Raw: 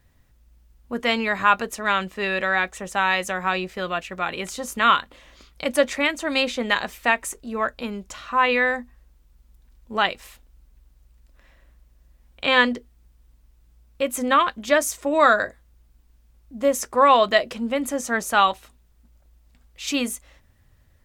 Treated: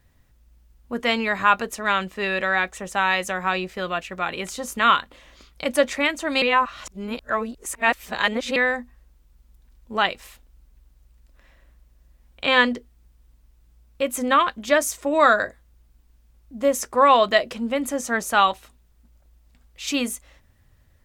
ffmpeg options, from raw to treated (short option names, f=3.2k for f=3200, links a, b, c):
-filter_complex "[0:a]asplit=3[a][b][c];[a]atrim=end=6.422[d];[b]atrim=start=6.418:end=8.562,asetpts=PTS-STARTPTS,areverse[e];[c]atrim=start=8.558[f];[d][e]acrossfade=d=0.004:c1=hsin:c2=hsin[g];[g][f]acrossfade=d=0.004:c1=hsin:c2=hsin"